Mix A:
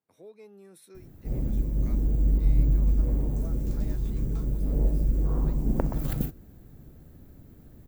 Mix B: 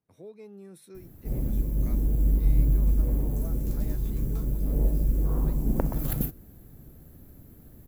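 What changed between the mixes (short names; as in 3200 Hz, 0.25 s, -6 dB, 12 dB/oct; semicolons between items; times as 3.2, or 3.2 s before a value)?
speech: remove HPF 410 Hz 6 dB/oct; background: add bell 12000 Hz +13 dB 0.53 oct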